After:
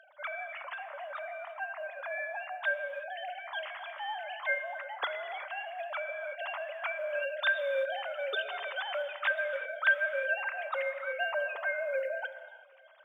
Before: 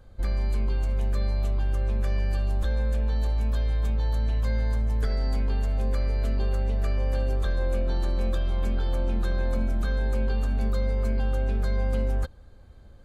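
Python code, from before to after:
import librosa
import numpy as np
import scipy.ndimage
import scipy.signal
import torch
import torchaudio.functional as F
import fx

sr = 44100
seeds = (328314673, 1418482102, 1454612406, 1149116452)

y = fx.sine_speech(x, sr)
y = fx.lowpass(y, sr, hz=2000.0, slope=12, at=(0.74, 3.16))
y = fx.dereverb_blind(y, sr, rt60_s=1.0)
y = scipy.signal.sosfilt(scipy.signal.butter(2, 860.0, 'highpass', fs=sr, output='sos'), y)
y = fx.quant_float(y, sr, bits=6)
y = fx.echo_feedback(y, sr, ms=381, feedback_pct=50, wet_db=-23.5)
y = fx.rev_gated(y, sr, seeds[0], gate_ms=380, shape='flat', drr_db=9.5)
y = y * librosa.db_to_amplitude(-5.5)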